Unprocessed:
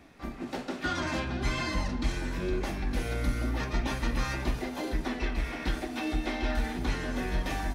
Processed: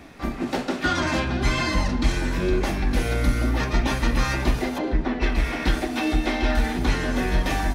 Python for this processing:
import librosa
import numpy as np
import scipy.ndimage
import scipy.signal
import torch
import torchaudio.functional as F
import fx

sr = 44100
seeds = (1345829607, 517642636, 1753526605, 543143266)

p1 = fx.rider(x, sr, range_db=4, speed_s=0.5)
p2 = x + F.gain(torch.from_numpy(p1), -2.5).numpy()
p3 = fx.spacing_loss(p2, sr, db_at_10k=24, at=(4.77, 5.21), fade=0.02)
y = F.gain(torch.from_numpy(p3), 3.5).numpy()